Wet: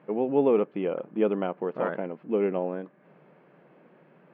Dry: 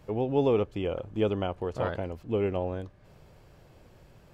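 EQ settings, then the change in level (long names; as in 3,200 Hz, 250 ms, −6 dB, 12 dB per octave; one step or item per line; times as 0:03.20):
linear-phase brick-wall high-pass 150 Hz
low-pass filter 2,300 Hz 24 dB per octave
parametric band 770 Hz −2 dB
+3.0 dB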